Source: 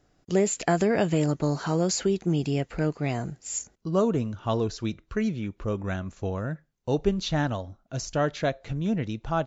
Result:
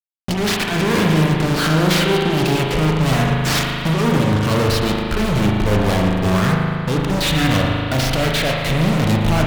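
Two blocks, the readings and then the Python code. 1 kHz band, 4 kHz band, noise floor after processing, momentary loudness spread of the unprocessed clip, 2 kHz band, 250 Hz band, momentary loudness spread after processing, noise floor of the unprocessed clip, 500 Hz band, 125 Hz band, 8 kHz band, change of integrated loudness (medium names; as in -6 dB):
+11.0 dB, +17.0 dB, -23 dBFS, 9 LU, +15.0 dB, +9.5 dB, 4 LU, -67 dBFS, +6.5 dB, +12.5 dB, no reading, +10.5 dB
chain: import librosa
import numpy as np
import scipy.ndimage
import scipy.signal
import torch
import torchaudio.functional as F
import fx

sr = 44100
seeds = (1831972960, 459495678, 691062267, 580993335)

y = fx.tracing_dist(x, sr, depth_ms=0.5)
y = scipy.signal.sosfilt(scipy.signal.butter(4, 4700.0, 'lowpass', fs=sr, output='sos'), y)
y = fx.high_shelf(y, sr, hz=2300.0, db=7.0)
y = fx.transient(y, sr, attack_db=8, sustain_db=-5)
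y = fx.over_compress(y, sr, threshold_db=-25.0, ratio=-0.5)
y = fx.filter_lfo_notch(y, sr, shape='saw_up', hz=0.32, low_hz=440.0, high_hz=1600.0, q=1.4)
y = fx.fuzz(y, sr, gain_db=48.0, gate_db=-45.0)
y = fx.echo_feedback(y, sr, ms=115, feedback_pct=48, wet_db=-17.0)
y = fx.rev_spring(y, sr, rt60_s=2.6, pass_ms=(38,), chirp_ms=35, drr_db=-1.0)
y = F.gain(torch.from_numpy(y), -4.5).numpy()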